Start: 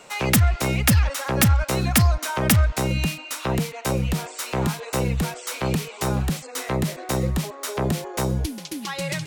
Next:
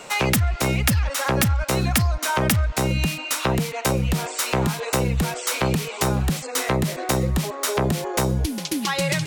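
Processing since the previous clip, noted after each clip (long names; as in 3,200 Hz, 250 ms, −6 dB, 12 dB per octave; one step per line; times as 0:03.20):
downward compressor, threshold −25 dBFS, peak gain reduction 10.5 dB
level +7 dB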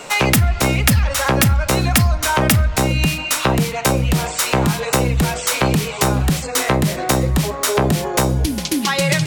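rectangular room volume 220 cubic metres, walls furnished, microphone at 0.35 metres
level +5.5 dB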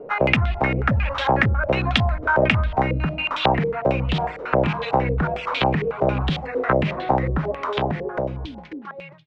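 fade-out on the ending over 1.98 s
high-frequency loss of the air 85 metres
low-pass on a step sequencer 11 Hz 460–3,400 Hz
level −6 dB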